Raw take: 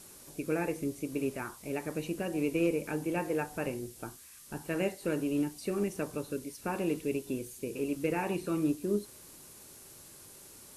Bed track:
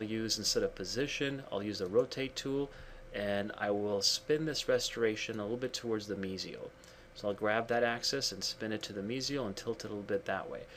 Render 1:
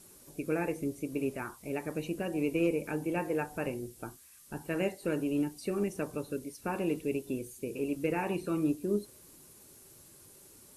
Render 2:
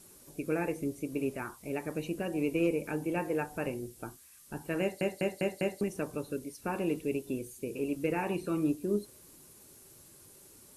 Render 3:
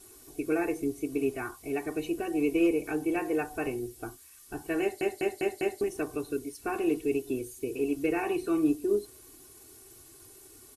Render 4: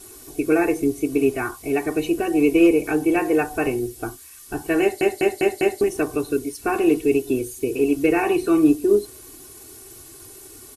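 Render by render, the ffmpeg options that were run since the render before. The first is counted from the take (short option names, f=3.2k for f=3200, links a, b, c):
-af "afftdn=nr=6:nf=-53"
-filter_complex "[0:a]asplit=6[a][b][c][d][e][f];[a]atrim=end=5.012[g];[b]atrim=start=4.808:end=5.012[h];[c]atrim=start=4.808:end=5.012[i];[d]atrim=start=4.808:end=5.012[j];[e]atrim=start=4.808:end=5.012[k];[f]atrim=start=5.808[l];[g][h]acrossfade=d=0.004:c1=hsin:c2=hsin[m];[m][i]acrossfade=d=0.004:c1=hsin:c2=hsin[n];[n][j]acrossfade=d=0.004:c1=hsin:c2=hsin[o];[o][k]acrossfade=d=0.004:c1=hsin:c2=hsin[p];[p][l]acrossfade=d=0.004:c1=hsin:c2=hsin"
-af "aecho=1:1:2.7:0.99"
-af "volume=10dB"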